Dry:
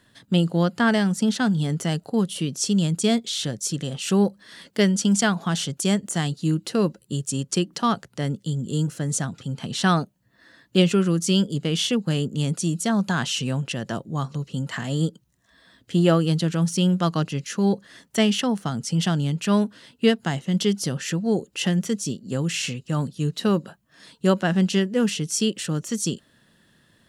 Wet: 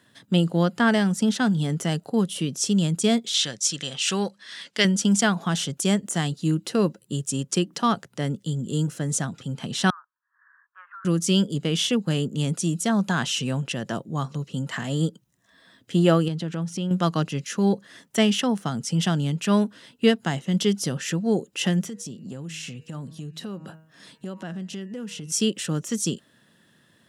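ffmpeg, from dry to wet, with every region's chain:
-filter_complex "[0:a]asettb=1/sr,asplit=3[a][b][c];[a]atrim=end=3.344[d];[b]atrim=start=3.34:end=4.85,asetpts=PTS-STARTPTS,afade=t=in:d=0.004:c=qsin,afade=t=out:st=1.506:d=0.004:c=qsin,lowpass=6.6k,tiltshelf=f=970:g=-8.5[e];[c]atrim=start=4.846[f];[d][e]acrossfade=d=0.004:c1=hsin:c2=qsin[g];[g][f]acrossfade=d=0.004:c1=qsin:c2=hsin,asettb=1/sr,asplit=3[h][i][j];[h]atrim=end=9.904[k];[i]atrim=start=9.9:end=11.05,asetpts=PTS-STARTPTS,afade=t=in:d=0.004:c=qsin,afade=t=out:st=1.146:d=0.004:c=qsin,asuperpass=centerf=1300:order=8:qfactor=1.9,acompressor=threshold=-38dB:ratio=6:attack=3.2:release=140:knee=1:detection=peak[l];[j]atrim=start=11.046[m];[k][l]acrossfade=d=0.004:c1=hsin:c2=qsin[n];[n][m]acrossfade=d=0.004:c1=qsin:c2=hsin,asettb=1/sr,asplit=3[o][p][q];[o]atrim=end=16.284[r];[p]atrim=start=16.28:end=16.91,asetpts=PTS-STARTPTS,afade=t=in:d=0.004:c=qsin,afade=t=out:st=0.626:d=0.004:c=qsin,lowpass=f=3k:p=1,acompressor=threshold=-27dB:ratio=2.5:attack=3.2:release=140:knee=1:detection=peak[s];[q]atrim=start=16.906[t];[r][s]acrossfade=d=0.004:c1=hsin:c2=qsin[u];[u][t]acrossfade=d=0.004:c1=qsin:c2=hsin,asettb=1/sr,asplit=3[v][w][x];[v]atrim=end=21.824[y];[w]atrim=start=21.82:end=25.32,asetpts=PTS-STARTPTS,afade=t=in:d=0.004:c=qsin,afade=t=out:st=3.496:d=0.004:c=qsin,equalizer=f=130:t=o:w=2.1:g=4,bandreject=f=158.8:t=h:w=4,bandreject=f=317.6:t=h:w=4,bandreject=f=476.4:t=h:w=4,bandreject=f=635.2:t=h:w=4,bandreject=f=794:t=h:w=4,bandreject=f=952.8:t=h:w=4,bandreject=f=1.1116k:t=h:w=4,bandreject=f=1.2704k:t=h:w=4,bandreject=f=1.4292k:t=h:w=4,bandreject=f=1.588k:t=h:w=4,bandreject=f=1.7468k:t=h:w=4,bandreject=f=1.9056k:t=h:w=4,bandreject=f=2.0644k:t=h:w=4,bandreject=f=2.2232k:t=h:w=4,bandreject=f=2.382k:t=h:w=4,bandreject=f=2.5408k:t=h:w=4,bandreject=f=2.6996k:t=h:w=4,bandreject=f=2.8584k:t=h:w=4,acompressor=threshold=-32dB:ratio=6:attack=3.2:release=140:knee=1:detection=peak[z];[x]atrim=start=25.316[aa];[y][z]acrossfade=d=0.004:c1=hsin:c2=qsin[ab];[ab][aa]acrossfade=d=0.004:c1=qsin:c2=hsin,highpass=110,bandreject=f=4.4k:w=16"

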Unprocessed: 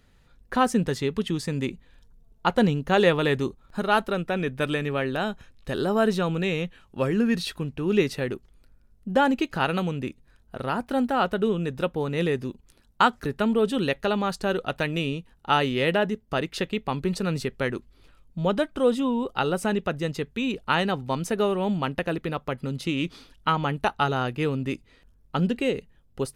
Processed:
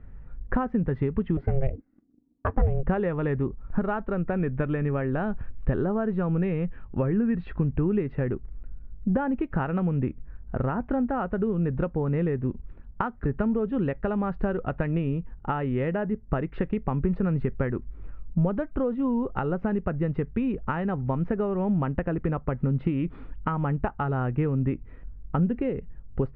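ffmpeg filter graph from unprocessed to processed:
-filter_complex "[0:a]asettb=1/sr,asplit=3[a][b][c];[a]atrim=end=1.374[d];[b]atrim=start=1.37:end=2.83,asetpts=PTS-STARTPTS,afade=t=in:d=0.004:c=qsin,afade=t=out:st=1.456:d=0.004:c=qsin,lowpass=f=2.9k:p=1,agate=range=-20dB:threshold=-49dB:ratio=16:release=100:detection=peak,aeval=exprs='val(0)*sin(2*PI*270*n/s)':c=same[e];[c]atrim=start=2.826[f];[d][e]acrossfade=d=0.004:c1=hsin:c2=qsin[g];[g][f]acrossfade=d=0.004:c1=qsin:c2=hsin,acompressor=threshold=-30dB:ratio=6,lowpass=f=2k:w=0.5412,lowpass=f=2k:w=1.3066,aemphasis=mode=reproduction:type=bsi,volume=3.5dB"

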